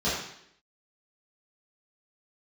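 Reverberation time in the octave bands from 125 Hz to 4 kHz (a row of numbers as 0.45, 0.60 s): 0.65, 0.75, 0.75, 0.65, 0.75, 0.70 s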